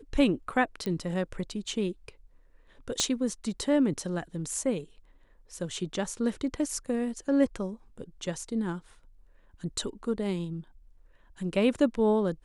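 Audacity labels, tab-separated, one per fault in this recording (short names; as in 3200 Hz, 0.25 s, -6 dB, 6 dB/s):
0.860000	0.860000	pop -20 dBFS
3.000000	3.000000	pop -12 dBFS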